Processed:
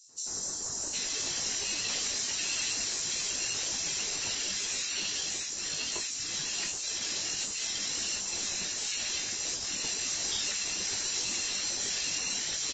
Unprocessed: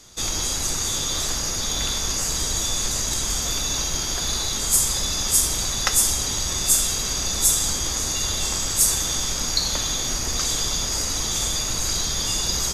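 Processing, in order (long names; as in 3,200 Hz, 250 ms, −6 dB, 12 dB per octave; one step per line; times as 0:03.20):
Butterworth high-pass 700 Hz 72 dB per octave
reverb reduction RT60 0.99 s
high-shelf EQ 5,600 Hz +3 dB
automatic gain control gain up to 12.5 dB
brickwall limiter −8.5 dBFS, peak gain reduction 7.5 dB
downward compressor 10 to 1, threshold −20 dBFS, peak gain reduction 6.5 dB
phase-vocoder pitch shift with formants kept −2.5 semitones
ring modulation 750 Hz
soft clipping −23.5 dBFS, distortion −13 dB
double-tracking delay 20 ms −7.5 dB
three-band delay without the direct sound highs, lows, mids 90/760 ms, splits 1,300/5,400 Hz
level −1 dB
Ogg Vorbis 32 kbit/s 16,000 Hz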